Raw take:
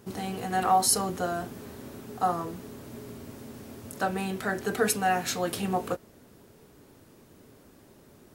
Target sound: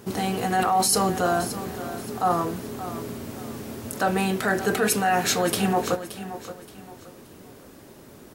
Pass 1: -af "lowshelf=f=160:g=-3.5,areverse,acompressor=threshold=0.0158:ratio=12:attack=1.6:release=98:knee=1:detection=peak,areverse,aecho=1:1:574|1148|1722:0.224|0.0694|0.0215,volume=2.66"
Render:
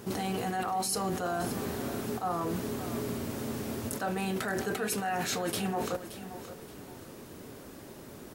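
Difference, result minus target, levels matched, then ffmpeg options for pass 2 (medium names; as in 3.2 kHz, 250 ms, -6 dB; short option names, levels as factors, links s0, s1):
compression: peak gain reduction +10.5 dB
-af "lowshelf=f=160:g=-3.5,areverse,acompressor=threshold=0.0596:ratio=12:attack=1.6:release=98:knee=1:detection=peak,areverse,aecho=1:1:574|1148|1722:0.224|0.0694|0.0215,volume=2.66"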